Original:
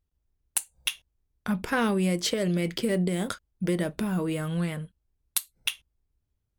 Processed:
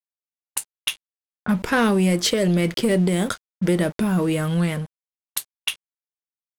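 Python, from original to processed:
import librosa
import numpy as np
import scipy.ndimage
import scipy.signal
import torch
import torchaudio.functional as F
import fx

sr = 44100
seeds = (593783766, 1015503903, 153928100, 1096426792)

y = fx.leveller(x, sr, passes=2)
y = np.where(np.abs(y) >= 10.0 ** (-42.0 / 20.0), y, 0.0)
y = fx.env_lowpass(y, sr, base_hz=790.0, full_db=-20.5)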